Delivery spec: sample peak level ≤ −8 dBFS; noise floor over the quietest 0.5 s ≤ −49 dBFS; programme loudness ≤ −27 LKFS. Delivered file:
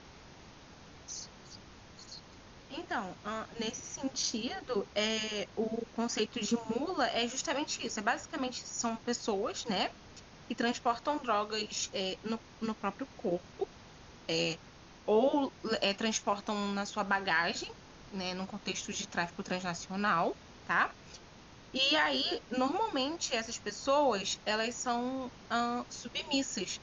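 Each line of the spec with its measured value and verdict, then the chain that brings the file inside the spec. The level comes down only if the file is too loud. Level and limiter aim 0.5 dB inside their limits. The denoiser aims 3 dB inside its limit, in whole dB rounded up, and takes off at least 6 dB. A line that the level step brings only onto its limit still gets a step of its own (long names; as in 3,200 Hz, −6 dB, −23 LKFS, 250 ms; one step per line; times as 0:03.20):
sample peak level −16.5 dBFS: in spec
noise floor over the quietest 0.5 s −54 dBFS: in spec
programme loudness −34.0 LKFS: in spec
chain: no processing needed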